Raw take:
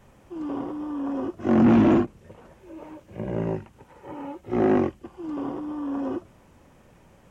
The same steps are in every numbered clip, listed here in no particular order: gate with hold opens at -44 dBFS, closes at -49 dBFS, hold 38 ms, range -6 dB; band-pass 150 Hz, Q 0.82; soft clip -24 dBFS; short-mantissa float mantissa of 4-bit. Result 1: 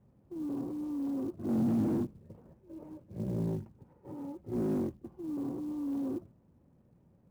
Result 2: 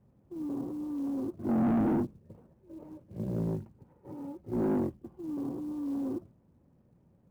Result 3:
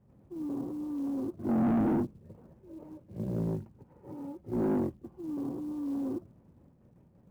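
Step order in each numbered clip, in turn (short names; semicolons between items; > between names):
soft clip > band-pass > short-mantissa float > gate with hold; band-pass > gate with hold > short-mantissa float > soft clip; gate with hold > band-pass > short-mantissa float > soft clip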